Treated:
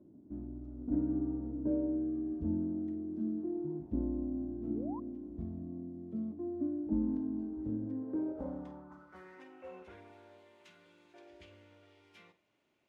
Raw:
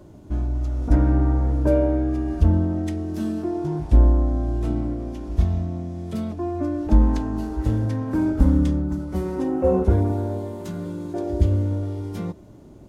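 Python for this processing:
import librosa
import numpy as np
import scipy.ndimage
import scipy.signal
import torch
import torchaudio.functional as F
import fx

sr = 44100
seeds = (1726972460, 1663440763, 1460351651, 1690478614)

y = fx.filter_sweep_bandpass(x, sr, from_hz=260.0, to_hz=2500.0, start_s=7.82, end_s=9.53, q=2.8)
y = fx.room_flutter(y, sr, wall_m=8.4, rt60_s=0.24)
y = fx.spec_paint(y, sr, seeds[0], shape='rise', start_s=4.6, length_s=0.4, low_hz=210.0, high_hz=1100.0, level_db=-41.0)
y = y * 10.0 ** (-6.5 / 20.0)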